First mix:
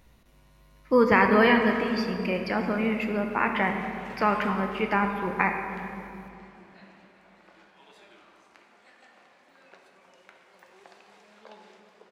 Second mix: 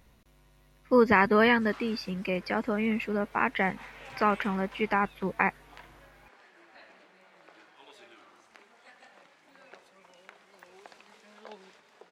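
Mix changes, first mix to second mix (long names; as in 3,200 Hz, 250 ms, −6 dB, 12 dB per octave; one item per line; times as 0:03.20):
background +4.0 dB
reverb: off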